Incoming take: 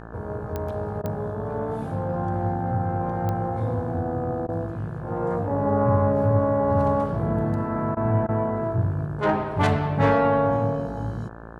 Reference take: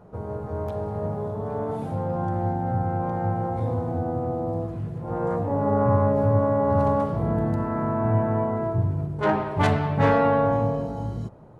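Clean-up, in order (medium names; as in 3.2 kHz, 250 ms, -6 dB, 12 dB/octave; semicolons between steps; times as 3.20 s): de-click; de-hum 56.4 Hz, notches 31; interpolate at 1.02/4.47/7.95/8.27 s, 16 ms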